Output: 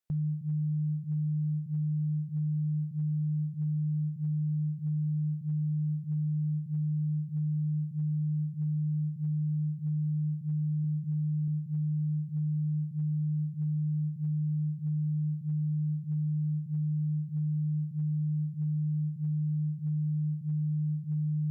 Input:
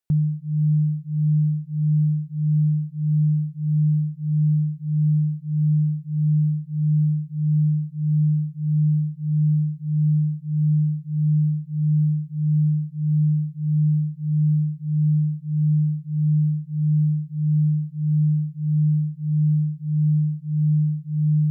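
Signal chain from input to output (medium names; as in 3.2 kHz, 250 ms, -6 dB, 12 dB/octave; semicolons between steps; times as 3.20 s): spectral sustain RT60 0.41 s; recorder AGC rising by 14 dB/s; 10.84–11.48 s: peaking EQ 220 Hz +4.5 dB 1.4 oct; peak limiter -21 dBFS, peak gain reduction 9 dB; trim -5.5 dB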